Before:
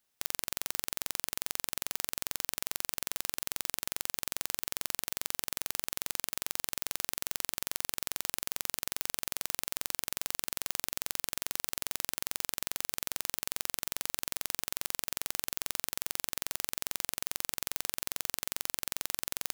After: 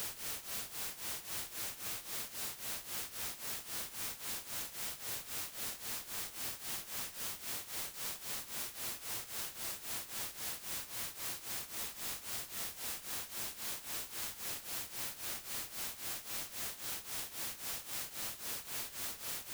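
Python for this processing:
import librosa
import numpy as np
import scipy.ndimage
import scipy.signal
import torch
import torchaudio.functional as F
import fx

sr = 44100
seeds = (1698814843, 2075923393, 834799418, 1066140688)

y = scipy.signal.sosfilt(scipy.signal.butter(2, 44.0, 'highpass', fs=sr, output='sos'), x)
y = 10.0 ** (-8.5 / 20.0) * np.tanh(y / 10.0 ** (-8.5 / 20.0))
y = y + 10.0 ** (-4.0 / 20.0) * np.pad(y, (int(259 * sr / 1000.0), 0))[:len(y)]
y = fx.paulstretch(y, sr, seeds[0], factor=6.0, window_s=0.05, from_s=1.77)
y = F.gain(torch.from_numpy(y), -2.0).numpy()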